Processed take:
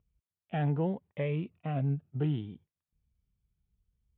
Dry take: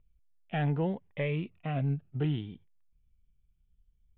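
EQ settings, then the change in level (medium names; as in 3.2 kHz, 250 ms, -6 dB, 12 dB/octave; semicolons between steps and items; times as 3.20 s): high-pass 62 Hz; peaking EQ 2 kHz -3 dB 0.74 oct; treble shelf 2.7 kHz -8 dB; 0.0 dB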